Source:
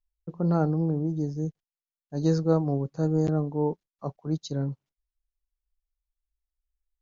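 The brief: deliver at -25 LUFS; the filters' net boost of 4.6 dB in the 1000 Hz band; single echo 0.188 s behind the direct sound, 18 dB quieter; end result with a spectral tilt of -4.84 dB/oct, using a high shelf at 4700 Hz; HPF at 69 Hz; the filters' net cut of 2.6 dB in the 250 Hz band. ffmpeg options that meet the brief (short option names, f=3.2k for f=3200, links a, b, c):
-af "highpass=69,equalizer=f=250:t=o:g=-5,equalizer=f=1k:t=o:g=7,highshelf=f=4.7k:g=-9,aecho=1:1:188:0.126,volume=4dB"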